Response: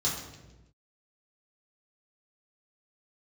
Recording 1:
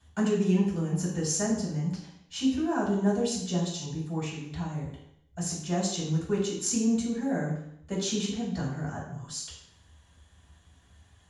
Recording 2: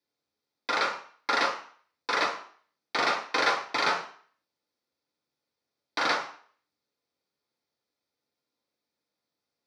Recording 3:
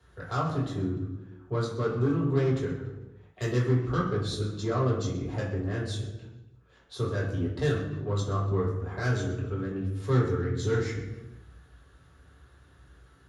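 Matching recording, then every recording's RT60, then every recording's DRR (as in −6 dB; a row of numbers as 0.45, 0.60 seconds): 3; 0.70, 0.50, 1.1 seconds; −8.0, −2.5, −6.5 decibels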